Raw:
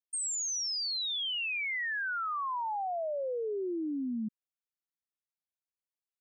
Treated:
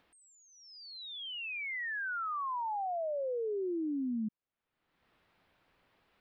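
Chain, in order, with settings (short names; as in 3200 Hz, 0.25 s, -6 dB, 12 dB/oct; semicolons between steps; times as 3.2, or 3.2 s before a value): limiter -36 dBFS, peak gain reduction 5 dB; upward compressor, threshold -43 dBFS; air absorption 430 m; gain +5.5 dB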